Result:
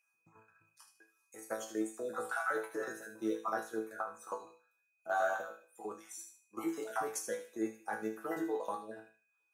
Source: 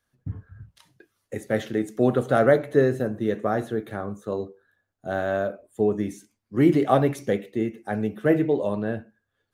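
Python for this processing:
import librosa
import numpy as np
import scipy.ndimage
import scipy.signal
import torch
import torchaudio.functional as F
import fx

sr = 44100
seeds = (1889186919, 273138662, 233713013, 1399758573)

y = fx.spec_dropout(x, sr, seeds[0], share_pct=27)
y = fx.band_shelf(y, sr, hz=1100.0, db=10.5, octaves=1.1)
y = y + 10.0 ** (-54.0 / 20.0) * np.sin(2.0 * np.pi * 2500.0 * np.arange(len(y)) / sr)
y = fx.level_steps(y, sr, step_db=13)
y = scipy.signal.sosfilt(scipy.signal.butter(2, 410.0, 'highpass', fs=sr, output='sos'), y)
y = fx.high_shelf_res(y, sr, hz=4500.0, db=11.5, q=1.5)
y = fx.resonator_bank(y, sr, root=45, chord='fifth', decay_s=0.32)
y = fx.echo_wet_highpass(y, sr, ms=76, feedback_pct=32, hz=2000.0, wet_db=-8.5)
y = y * librosa.db_to_amplitude(6.5)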